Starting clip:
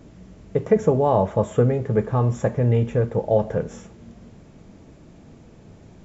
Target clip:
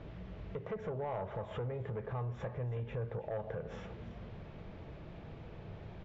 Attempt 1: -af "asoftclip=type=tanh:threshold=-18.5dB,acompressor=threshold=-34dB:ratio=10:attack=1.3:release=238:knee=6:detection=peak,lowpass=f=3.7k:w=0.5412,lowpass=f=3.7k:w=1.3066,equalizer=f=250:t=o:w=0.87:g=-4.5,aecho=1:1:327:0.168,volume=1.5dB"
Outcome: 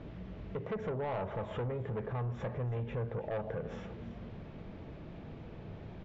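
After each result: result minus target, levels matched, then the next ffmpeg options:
soft clip: distortion +6 dB; 250 Hz band +2.0 dB
-af "asoftclip=type=tanh:threshold=-12.5dB,acompressor=threshold=-34dB:ratio=10:attack=1.3:release=238:knee=6:detection=peak,lowpass=f=3.7k:w=0.5412,lowpass=f=3.7k:w=1.3066,equalizer=f=250:t=o:w=0.87:g=-4.5,aecho=1:1:327:0.168,volume=1.5dB"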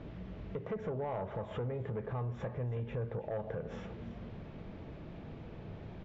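250 Hz band +2.5 dB
-af "asoftclip=type=tanh:threshold=-12.5dB,acompressor=threshold=-34dB:ratio=10:attack=1.3:release=238:knee=6:detection=peak,lowpass=f=3.7k:w=0.5412,lowpass=f=3.7k:w=1.3066,equalizer=f=250:t=o:w=0.87:g=-11,aecho=1:1:327:0.168,volume=1.5dB"

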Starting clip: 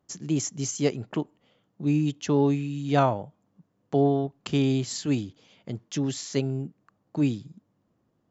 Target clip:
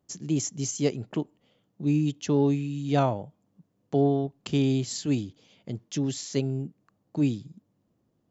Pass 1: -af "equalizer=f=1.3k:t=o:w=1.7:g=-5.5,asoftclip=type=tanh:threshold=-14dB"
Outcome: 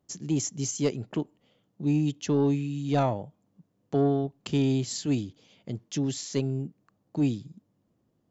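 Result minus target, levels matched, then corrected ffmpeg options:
soft clip: distortion +19 dB
-af "equalizer=f=1.3k:t=o:w=1.7:g=-5.5,asoftclip=type=tanh:threshold=-3dB"

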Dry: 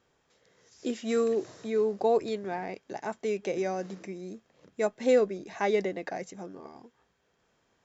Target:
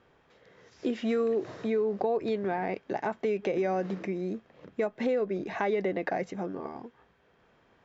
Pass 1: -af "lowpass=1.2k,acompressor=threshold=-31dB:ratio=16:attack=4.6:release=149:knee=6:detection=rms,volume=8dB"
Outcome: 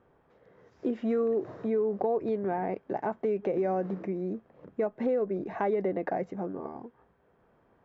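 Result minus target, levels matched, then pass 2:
4000 Hz band -13.0 dB
-af "lowpass=2.9k,acompressor=threshold=-31dB:ratio=16:attack=4.6:release=149:knee=6:detection=rms,volume=8dB"

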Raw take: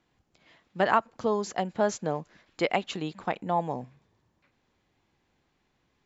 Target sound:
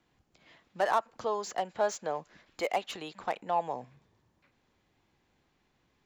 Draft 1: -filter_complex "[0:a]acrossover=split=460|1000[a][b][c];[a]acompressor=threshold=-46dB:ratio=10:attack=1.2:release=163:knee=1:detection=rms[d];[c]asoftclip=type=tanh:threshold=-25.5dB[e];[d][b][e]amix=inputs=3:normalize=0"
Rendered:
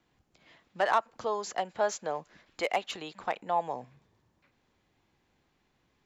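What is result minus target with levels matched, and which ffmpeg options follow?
soft clip: distortion -5 dB
-filter_complex "[0:a]acrossover=split=460|1000[a][b][c];[a]acompressor=threshold=-46dB:ratio=10:attack=1.2:release=163:knee=1:detection=rms[d];[c]asoftclip=type=tanh:threshold=-33.5dB[e];[d][b][e]amix=inputs=3:normalize=0"

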